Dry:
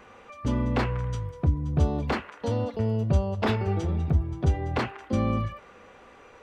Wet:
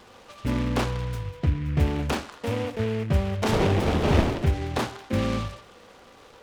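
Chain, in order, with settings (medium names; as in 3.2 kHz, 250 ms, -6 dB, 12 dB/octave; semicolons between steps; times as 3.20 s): 3.51–4.48 s: wind noise 540 Hz -27 dBFS; reverberation RT60 0.45 s, pre-delay 20 ms, DRR 10 dB; delay time shaken by noise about 1.8 kHz, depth 0.088 ms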